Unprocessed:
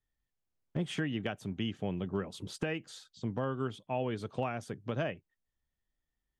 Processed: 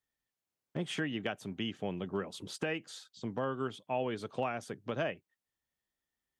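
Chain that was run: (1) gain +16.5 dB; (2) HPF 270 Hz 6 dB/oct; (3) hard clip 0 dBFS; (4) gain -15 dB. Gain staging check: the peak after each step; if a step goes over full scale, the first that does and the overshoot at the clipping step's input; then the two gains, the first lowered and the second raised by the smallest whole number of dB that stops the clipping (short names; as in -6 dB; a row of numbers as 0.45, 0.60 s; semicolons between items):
-5.0, -4.5, -4.5, -19.5 dBFS; no overload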